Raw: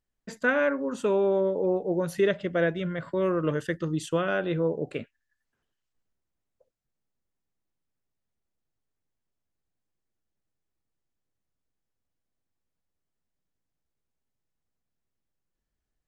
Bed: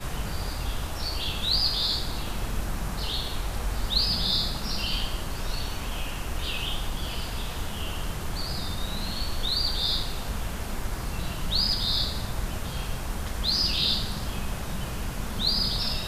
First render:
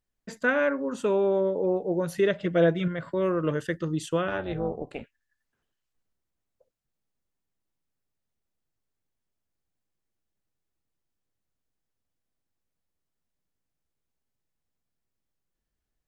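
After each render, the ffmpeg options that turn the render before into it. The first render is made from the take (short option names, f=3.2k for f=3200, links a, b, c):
-filter_complex "[0:a]asettb=1/sr,asplit=3[a][b][c];[a]atrim=end=2.424[d];[b]atrim=start=2.42:end=2.88,asetpts=PTS-STARTPTS,afade=t=in:d=0.004:c=qsin,afade=t=out:st=0.456:d=0.004:c=qsin,aecho=1:1:6.2:0.87,atrim=end_sample=20286[e];[c]atrim=start=2.876[f];[d][e]acrossfade=d=0.004:c1=hsin:c2=qsin[g];[g][f]acrossfade=d=0.004:c1=qsin:c2=hsin,asplit=3[h][i][j];[h]afade=t=out:st=4.27:d=0.02[k];[i]tremolo=f=280:d=0.788,afade=t=in:st=4.27:d=0.02,afade=t=out:st=5.02:d=0.02[l];[j]afade=t=in:st=5.02:d=0.02[m];[k][l][m]amix=inputs=3:normalize=0"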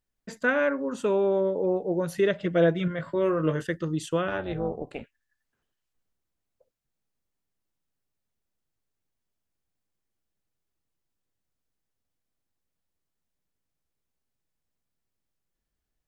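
-filter_complex "[0:a]asettb=1/sr,asplit=3[a][b][c];[a]atrim=end=2.884[d];[b]atrim=start=2.88:end=3.64,asetpts=PTS-STARTPTS,afade=t=in:d=0.004:c=qsin,afade=t=out:st=0.756:d=0.004:c=qsin,asplit=2[e][f];[f]adelay=19,volume=-7dB[g];[e][g]amix=inputs=2:normalize=0,atrim=end_sample=33516[h];[c]atrim=start=3.636[i];[d][h]acrossfade=d=0.004:c1=hsin:c2=qsin[j];[j][i]acrossfade=d=0.004:c1=qsin:c2=hsin"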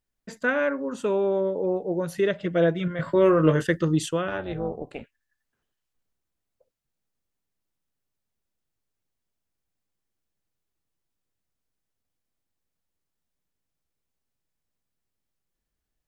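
-filter_complex "[0:a]asettb=1/sr,asplit=3[a][b][c];[a]atrim=end=2.994[d];[b]atrim=start=2.99:end=4.11,asetpts=PTS-STARTPTS,afade=t=in:d=0.004:c=qsin,afade=t=out:st=1.116:d=0.004:c=qsin,acontrast=67[e];[c]atrim=start=4.106[f];[d][e]acrossfade=d=0.004:c1=hsin:c2=qsin[g];[g][f]acrossfade=d=0.004:c1=qsin:c2=hsin"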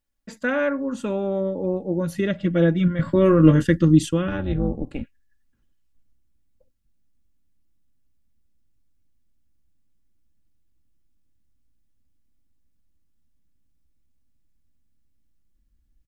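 -af "asubboost=boost=7.5:cutoff=230,aecho=1:1:3.6:0.48"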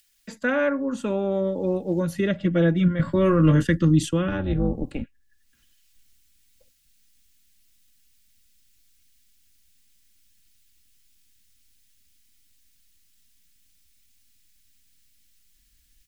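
-filter_complex "[0:a]acrossover=split=190|710|1900[a][b][c][d];[b]alimiter=limit=-17dB:level=0:latency=1[e];[d]acompressor=mode=upward:threshold=-47dB:ratio=2.5[f];[a][e][c][f]amix=inputs=4:normalize=0"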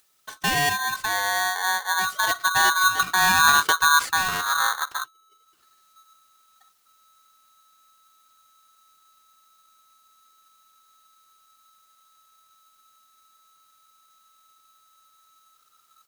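-af "aeval=exprs='val(0)*sgn(sin(2*PI*1300*n/s))':c=same"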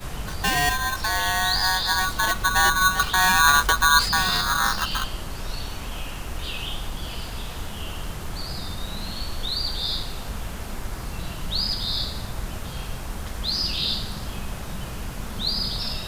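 -filter_complex "[1:a]volume=-0.5dB[a];[0:a][a]amix=inputs=2:normalize=0"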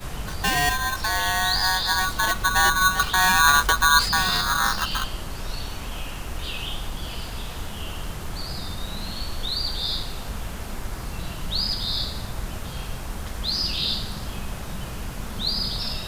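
-af anull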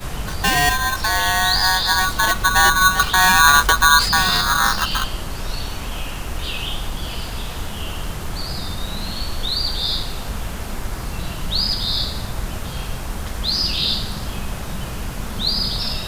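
-af "volume=5dB,alimiter=limit=-3dB:level=0:latency=1"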